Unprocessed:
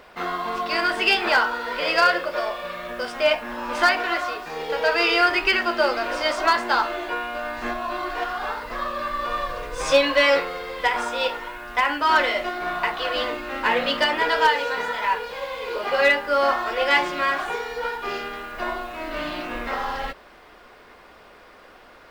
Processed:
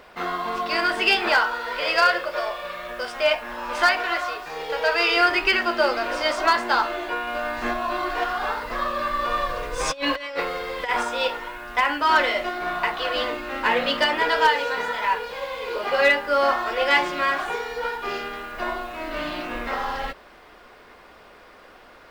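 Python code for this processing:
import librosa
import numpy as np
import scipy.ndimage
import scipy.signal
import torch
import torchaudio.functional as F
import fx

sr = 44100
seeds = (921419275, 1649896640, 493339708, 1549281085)

y = fx.peak_eq(x, sr, hz=220.0, db=-7.5, octaves=1.4, at=(1.34, 5.17))
y = fx.over_compress(y, sr, threshold_db=-23.0, ratio=-0.5, at=(7.27, 11.03))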